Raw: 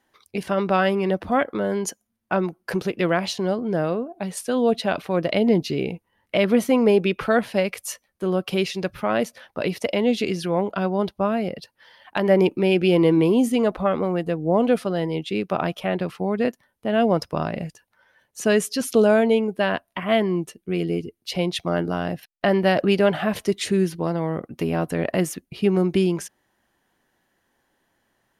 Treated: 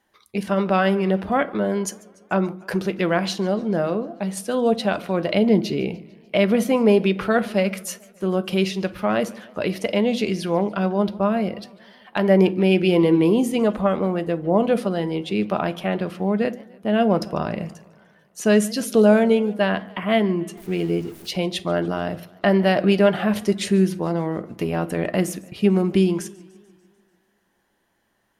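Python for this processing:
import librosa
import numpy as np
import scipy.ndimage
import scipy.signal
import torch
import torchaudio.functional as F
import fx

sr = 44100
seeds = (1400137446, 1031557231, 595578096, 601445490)

y = fx.zero_step(x, sr, step_db=-39.0, at=(20.57, 21.31))
y = fx.rev_fdn(y, sr, rt60_s=0.4, lf_ratio=1.35, hf_ratio=0.65, size_ms=29.0, drr_db=11.0)
y = fx.echo_warbled(y, sr, ms=147, feedback_pct=61, rate_hz=2.8, cents=178, wet_db=-23.0)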